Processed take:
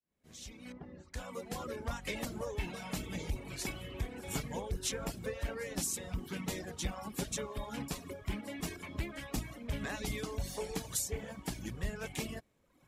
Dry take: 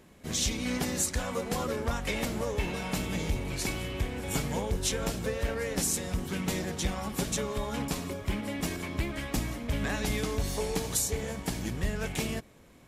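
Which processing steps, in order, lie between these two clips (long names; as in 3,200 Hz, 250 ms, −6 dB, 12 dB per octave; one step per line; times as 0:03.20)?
fade in at the beginning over 2.07 s
0:00.72–0:01.14: head-to-tape spacing loss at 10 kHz 44 dB
reverb reduction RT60 0.98 s
level −5.5 dB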